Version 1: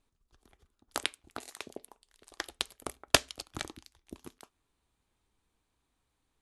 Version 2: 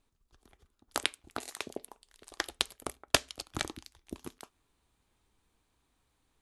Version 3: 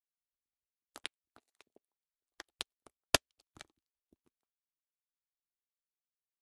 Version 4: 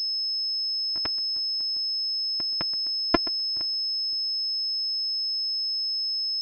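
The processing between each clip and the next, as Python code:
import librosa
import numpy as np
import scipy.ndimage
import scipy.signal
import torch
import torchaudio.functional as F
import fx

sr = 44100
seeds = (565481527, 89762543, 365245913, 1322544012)

y1 = fx.rider(x, sr, range_db=4, speed_s=0.5)
y2 = fx.upward_expand(y1, sr, threshold_db=-49.0, expansion=2.5)
y2 = y2 * librosa.db_to_amplitude(-2.0)
y3 = np.r_[np.sort(y2[:len(y2) // 128 * 128].reshape(-1, 128), axis=1).ravel(), y2[len(y2) // 128 * 128:]]
y3 = y3 + 10.0 ** (-19.0 / 20.0) * np.pad(y3, (int(126 * sr / 1000.0), 0))[:len(y3)]
y3 = fx.pwm(y3, sr, carrier_hz=5200.0)
y3 = y3 * librosa.db_to_amplitude(6.5)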